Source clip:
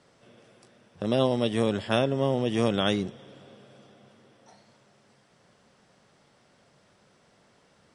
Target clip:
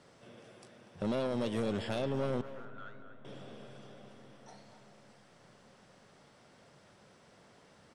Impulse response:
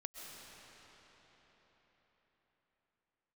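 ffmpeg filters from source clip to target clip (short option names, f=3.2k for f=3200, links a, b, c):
-filter_complex "[0:a]alimiter=limit=-17.5dB:level=0:latency=1:release=387,asoftclip=type=tanh:threshold=-28.5dB,asettb=1/sr,asplit=3[a][b][c];[a]atrim=end=2.414[d];[b]atrim=start=2.41:end=3.25,asetpts=PTS-STARTPTS,afade=t=in:d=0.004:c=qsin,afade=t=out:st=0.836:d=0.004:c=qsin,bandpass=f=1.4k:t=q:w=8.9:csg=0[e];[c]atrim=start=3.246[f];[d][e]acrossfade=d=0.004:c1=hsin:c2=qsin[g];[g][f]acrossfade=d=0.004:c1=qsin:c2=hsin,asplit=2[h][i];[i]adelay=240,highpass=300,lowpass=3.4k,asoftclip=type=hard:threshold=-38.5dB,volume=-9dB[j];[h][j]amix=inputs=2:normalize=0,asplit=2[k][l];[1:a]atrim=start_sample=2205,asetrate=34839,aresample=44100,lowpass=2.3k[m];[l][m]afir=irnorm=-1:irlink=0,volume=-14.5dB[n];[k][n]amix=inputs=2:normalize=0"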